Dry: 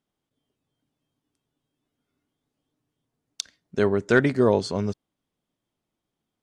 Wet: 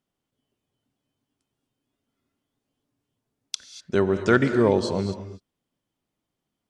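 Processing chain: gated-style reverb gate 260 ms rising, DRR 9.5 dB; speed mistake 25 fps video run at 24 fps

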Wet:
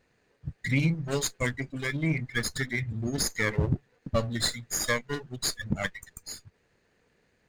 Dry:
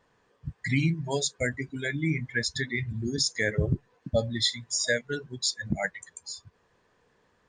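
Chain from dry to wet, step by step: comb filter that takes the minimum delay 0.45 ms

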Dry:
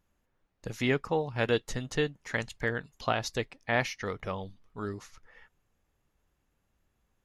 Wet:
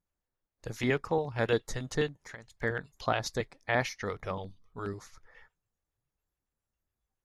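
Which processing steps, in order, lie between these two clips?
spectral noise reduction 13 dB; 2.15–2.62 s: compression 6:1, threshold -44 dBFS, peak gain reduction 17.5 dB; LFO notch square 7.2 Hz 220–2800 Hz

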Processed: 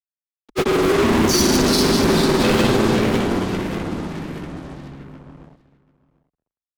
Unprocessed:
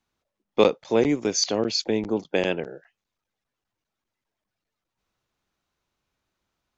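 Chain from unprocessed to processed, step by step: bass shelf 170 Hz +3.5 dB; band-stop 1 kHz, Q 5.2; in parallel at +2 dB: peak limiter -16 dBFS, peak gain reduction 11.5 dB; on the sum: comb of notches 250 Hz; FDN reverb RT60 1.8 s, low-frequency decay 1.3×, high-frequency decay 0.5×, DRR -9 dB; fuzz box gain 26 dB, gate -28 dBFS; granulator; ever faster or slower copies 231 ms, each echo -2 st, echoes 3, each echo -6 dB; on a send: delay 739 ms -20.5 dB; on the sum: frequency shift -54 Hz; trim -1.5 dB

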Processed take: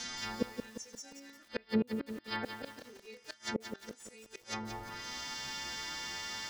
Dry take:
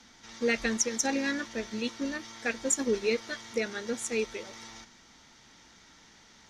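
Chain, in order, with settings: partials quantised in pitch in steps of 2 st; 1.42–2.79 s: steep low-pass 5 kHz 96 dB/octave; thinning echo 91 ms, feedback 44%, high-pass 880 Hz, level -13 dB; flange 0.45 Hz, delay 8.2 ms, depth 6.9 ms, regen +57%; inverted gate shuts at -30 dBFS, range -36 dB; low-pass that closes with the level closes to 600 Hz, closed at -42 dBFS; bit-crushed delay 175 ms, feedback 55%, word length 11-bit, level -7 dB; trim +14.5 dB

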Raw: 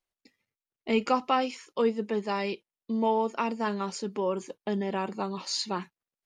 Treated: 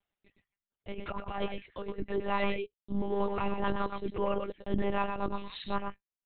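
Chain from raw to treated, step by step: reverb removal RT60 0.76 s; compressor with a negative ratio -29 dBFS, ratio -0.5; transient shaper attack -10 dB, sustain -6 dB; delay 114 ms -5.5 dB; monotone LPC vocoder at 8 kHz 200 Hz; trim +2.5 dB

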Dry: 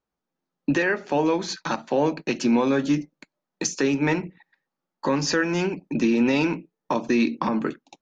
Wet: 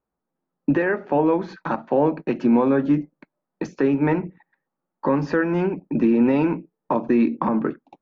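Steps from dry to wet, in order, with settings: low-pass 1.4 kHz 12 dB/octave; trim +3 dB

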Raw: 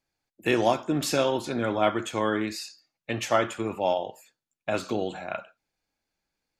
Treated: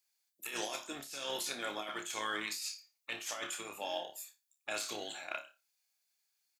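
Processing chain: harmony voices -12 st -10 dB; differentiator; in parallel at -11 dB: crossover distortion -50 dBFS; on the sum: compressor with a negative ratio -43 dBFS, ratio -1; flutter echo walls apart 4.9 m, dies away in 0.23 s; trim +2.5 dB

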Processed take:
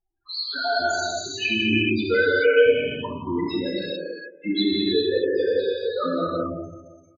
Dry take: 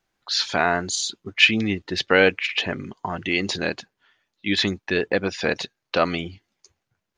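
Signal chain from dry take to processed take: on a send: feedback delay 173 ms, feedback 44%, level -10 dB; on the sum: LFO notch square 3.1 Hz 750–2300 Hz; peaking EQ 190 Hz -10 dB 0.23 oct; 3.73–4.50 s: transient shaper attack +9 dB, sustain -7 dB; loudest bins only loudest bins 4; gated-style reverb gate 470 ms flat, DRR -6.5 dB

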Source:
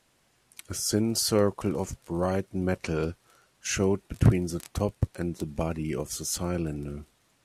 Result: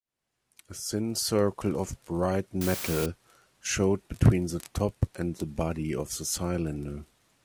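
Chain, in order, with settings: fade-in on the opening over 1.69 s; 2.61–3.06 s: word length cut 6-bit, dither triangular

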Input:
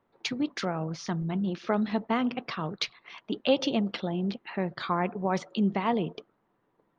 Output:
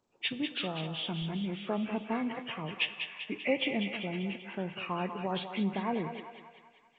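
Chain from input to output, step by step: knee-point frequency compression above 1.1 kHz 1.5:1; resonant high shelf 2.3 kHz +10.5 dB, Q 1.5; on a send: thinning echo 195 ms, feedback 60%, high-pass 540 Hz, level -6.5 dB; on the sum: Schroeder reverb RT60 1.5 s, DRR 15.5 dB; trim -5.5 dB

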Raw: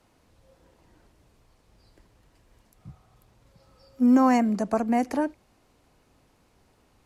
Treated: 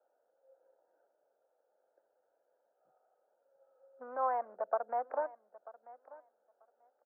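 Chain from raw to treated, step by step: local Wiener filter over 41 samples; compression 3:1, threshold -27 dBFS, peak gain reduction 9 dB; Chebyshev band-pass 530–1500 Hz, order 3; on a send: feedback delay 939 ms, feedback 15%, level -19 dB; on the sum: trim +1 dB

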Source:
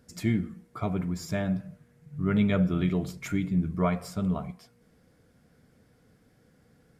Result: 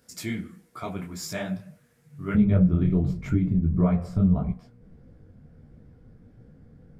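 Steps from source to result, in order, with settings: tilt EQ +2 dB/octave, from 2.34 s -4 dB/octave; compression 5:1, threshold -18 dBFS, peak gain reduction 8 dB; detune thickener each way 54 cents; trim +4 dB

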